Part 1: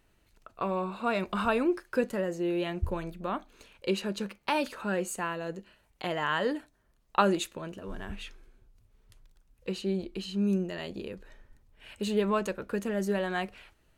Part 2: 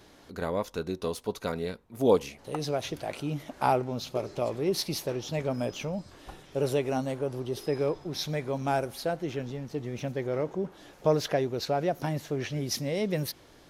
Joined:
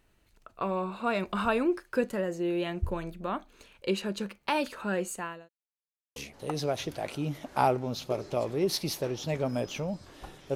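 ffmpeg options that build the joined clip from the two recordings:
-filter_complex "[0:a]apad=whole_dur=10.55,atrim=end=10.55,asplit=2[a][b];[a]atrim=end=5.49,asetpts=PTS-STARTPTS,afade=t=out:st=4.95:d=0.54:c=qsin[c];[b]atrim=start=5.49:end=6.16,asetpts=PTS-STARTPTS,volume=0[d];[1:a]atrim=start=2.21:end=6.6,asetpts=PTS-STARTPTS,afade=t=in:d=0.004:c=hsin[e];[c][d][e]concat=n=3:v=0:a=1"

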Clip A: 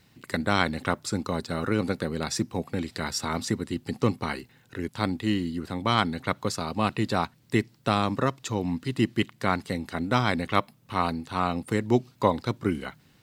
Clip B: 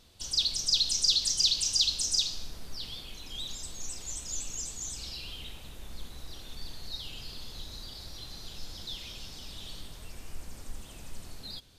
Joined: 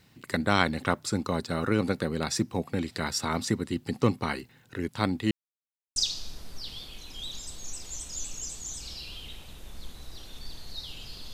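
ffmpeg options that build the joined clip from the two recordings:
-filter_complex "[0:a]apad=whole_dur=11.33,atrim=end=11.33,asplit=2[a][b];[a]atrim=end=5.31,asetpts=PTS-STARTPTS,afade=t=out:st=5.306:d=0.004:c=hsin[c];[b]atrim=start=5.31:end=5.96,asetpts=PTS-STARTPTS,volume=0[d];[1:a]atrim=start=2.12:end=7.49,asetpts=PTS-STARTPTS,afade=t=in:d=0.004:c=hsin[e];[c][d][e]concat=n=3:v=0:a=1"

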